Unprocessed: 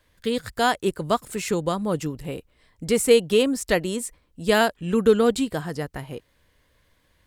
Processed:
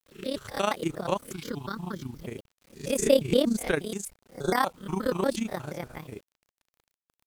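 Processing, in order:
peak hold with a rise ahead of every peak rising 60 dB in 0.34 s
amplitude modulation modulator 31 Hz, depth 65%
0:01.33–0:02.24: phaser with its sweep stopped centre 2,200 Hz, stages 6
0:03.00–0:03.56: low-shelf EQ 240 Hz +11.5 dB
0:04.08–0:04.56: time-frequency box erased 2,000–4,000 Hz
bit reduction 9 bits
0:04.55–0:05.21: octave-band graphic EQ 125/500/1,000/2,000 Hz −5/−7/+11/−8 dB
pitch modulation by a square or saw wave square 4.2 Hz, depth 250 cents
level −4 dB

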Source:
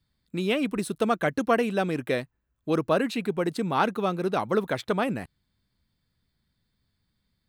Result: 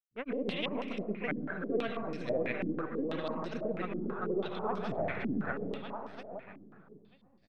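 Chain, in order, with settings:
gain on one half-wave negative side −3 dB
repeating echo 510 ms, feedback 39%, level −11 dB
reversed playback
downward compressor 6 to 1, threshold −35 dBFS, peak gain reduction 16.5 dB
reversed playback
granular cloud, spray 358 ms, pitch spread up and down by 0 semitones
on a send at −4 dB: convolution reverb RT60 0.70 s, pre-delay 119 ms
on the sum: low-pass on a step sequencer 6.1 Hz 280–5,300 Hz

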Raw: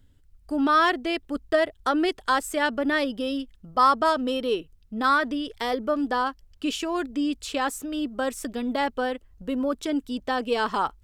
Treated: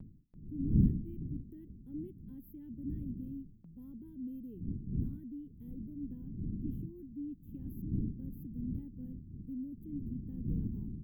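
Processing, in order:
wind on the microphone 300 Hz −28 dBFS
inverse Chebyshev band-stop filter 600–8,800 Hz, stop band 50 dB
noise gate with hold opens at −41 dBFS
low-shelf EQ 420 Hz −6 dB
level −4 dB

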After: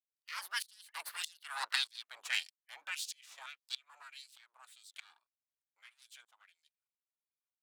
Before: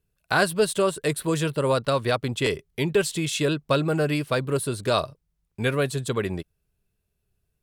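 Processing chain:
gain on one half-wave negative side −12 dB
source passing by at 0:01.73, 34 m/s, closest 17 metres
gate on every frequency bin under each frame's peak −15 dB weak
auto-filter high-pass sine 1.7 Hz 930–4,800 Hz
tremolo with a ramp in dB swelling 1.6 Hz, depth 24 dB
level +5 dB

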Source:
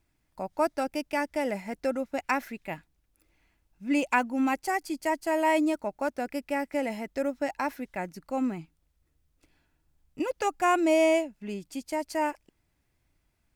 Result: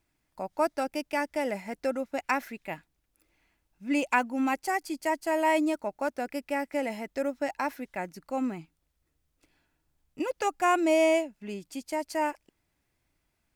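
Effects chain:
low-shelf EQ 160 Hz −6.5 dB

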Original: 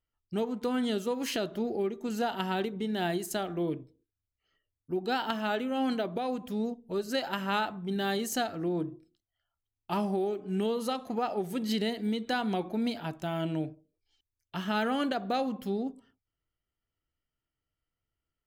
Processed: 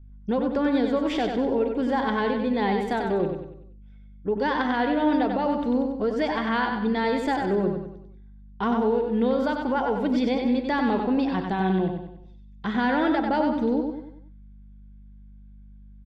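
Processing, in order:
low-pass filter 2,200 Hz 12 dB per octave
speed change +15%
in parallel at +3 dB: brickwall limiter −27.5 dBFS, peak gain reduction 9.5 dB
on the sum: mains hum 50 Hz, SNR 26 dB
low-shelf EQ 87 Hz +11 dB
on a send: repeating echo 95 ms, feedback 43%, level −5 dB

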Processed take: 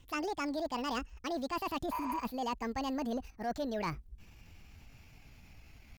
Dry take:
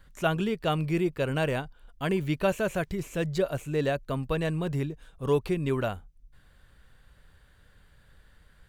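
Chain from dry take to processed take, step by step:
gliding playback speed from 164% → 126%
in parallel at −2 dB: output level in coarse steps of 17 dB
on the sum: healed spectral selection 0:01.96–0:02.17, 330–7,800 Hz after
reversed playback
downward compressor 6 to 1, threshold −32 dBFS, peak gain reduction 13 dB
reversed playback
pitch shifter +2.5 semitones
soft clipping −26 dBFS, distortion −21 dB

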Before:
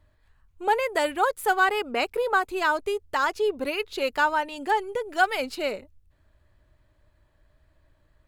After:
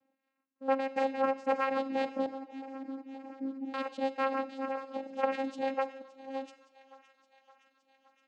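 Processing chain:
delay that plays each chunk backwards 501 ms, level −4 dB
reverb reduction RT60 0.9 s
0:04.64–0:05.23: downward compressor 5 to 1, threshold −27 dBFS, peak gain reduction 10 dB
channel vocoder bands 8, saw 268 Hz
0:02.26–0:03.74: formant resonators in series u
feedback echo with a high-pass in the loop 567 ms, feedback 72%, high-pass 720 Hz, level −16.5 dB
on a send at −14 dB: convolution reverb RT60 0.85 s, pre-delay 32 ms
on the sum: level −7 dB

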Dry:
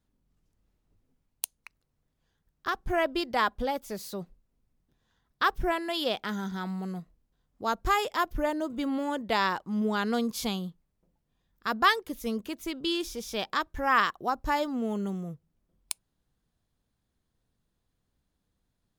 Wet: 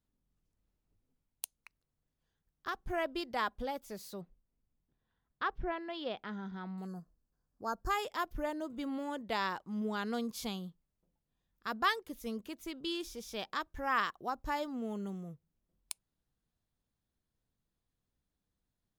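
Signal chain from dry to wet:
0:04.21–0:06.78: high-frequency loss of the air 250 metres
0:06.87–0:07.90: gain on a spectral selection 1,800–4,200 Hz −20 dB
level −8 dB

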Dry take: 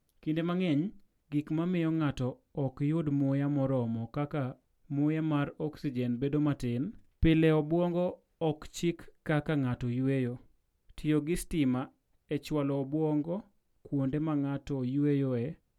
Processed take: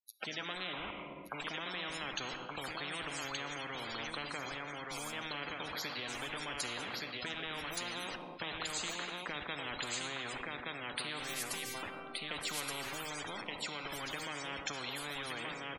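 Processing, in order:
high-pass filter 260 Hz 24 dB per octave
low-shelf EQ 460 Hz −9 dB
downward compressor 8 to 1, threshold −41 dBFS, peak gain reduction 15 dB
bit-depth reduction 10 bits, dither none
0:00.73–0:01.40: low-pass with resonance 1,000 Hz, resonance Q 12
0:04.45–0:05.13: phaser with its sweep stopped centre 330 Hz, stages 8
0:11.23–0:11.83: phases set to zero 391 Hz
spectral peaks only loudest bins 64
single-tap delay 1,173 ms −9 dB
rectangular room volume 1,200 cubic metres, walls mixed, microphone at 0.34 metres
every bin compressed towards the loudest bin 10 to 1
level +10.5 dB

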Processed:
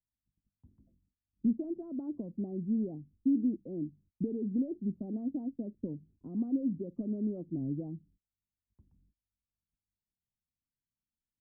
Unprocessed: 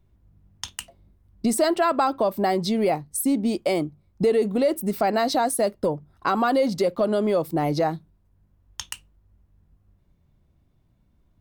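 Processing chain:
noise gate −52 dBFS, range −26 dB
transistor ladder low-pass 310 Hz, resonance 50%
wow of a warped record 45 rpm, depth 160 cents
level −3 dB

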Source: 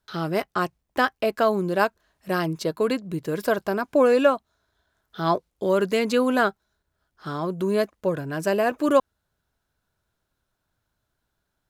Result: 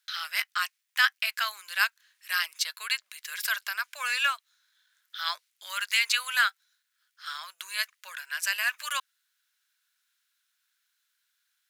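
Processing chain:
inverse Chebyshev high-pass filter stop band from 290 Hz, stop band 80 dB
level +7.5 dB

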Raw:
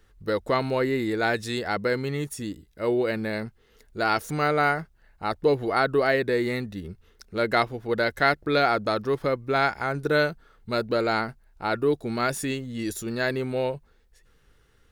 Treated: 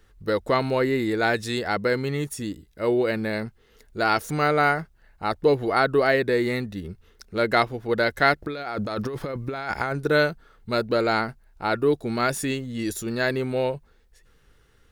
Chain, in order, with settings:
0:08.42–0:09.93: compressor whose output falls as the input rises −31 dBFS, ratio −1
level +2 dB

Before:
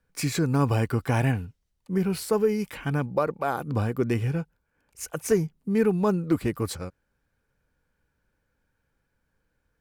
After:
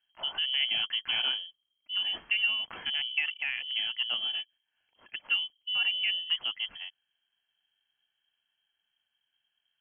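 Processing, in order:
0:02.04–0:03.76: transient designer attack +2 dB, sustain +6 dB
voice inversion scrambler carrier 3,200 Hz
level −7 dB

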